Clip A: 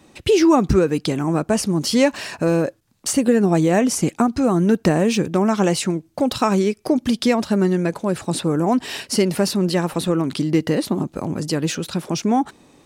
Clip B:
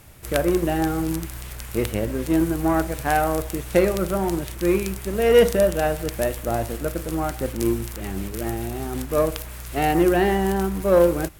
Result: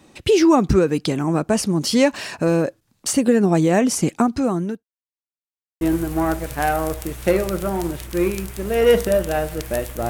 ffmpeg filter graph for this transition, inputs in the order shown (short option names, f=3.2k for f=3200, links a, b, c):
-filter_complex "[0:a]apad=whole_dur=10.09,atrim=end=10.09,asplit=2[a][b];[a]atrim=end=4.84,asetpts=PTS-STARTPTS,afade=t=out:st=4.15:d=0.69:c=qsin[c];[b]atrim=start=4.84:end=5.81,asetpts=PTS-STARTPTS,volume=0[d];[1:a]atrim=start=2.29:end=6.57,asetpts=PTS-STARTPTS,afade=t=in:d=0.004:c=hsin[e];[c][d][e]concat=n=3:v=0:a=1"